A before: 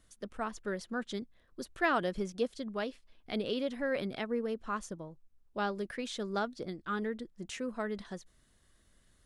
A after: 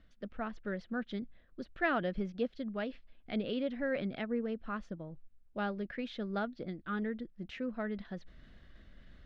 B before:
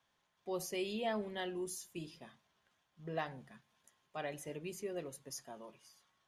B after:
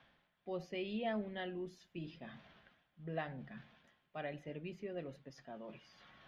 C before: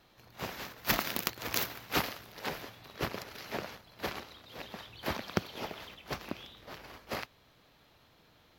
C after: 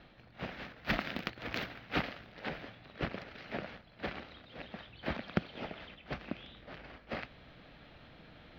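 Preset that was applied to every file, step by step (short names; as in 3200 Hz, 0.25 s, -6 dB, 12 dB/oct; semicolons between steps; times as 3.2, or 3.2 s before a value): fifteen-band EQ 100 Hz -6 dB, 400 Hz -6 dB, 1000 Hz -9 dB, 10000 Hz -9 dB; reverse; upward compressor, threshold -45 dBFS; reverse; air absorption 330 m; gain +3 dB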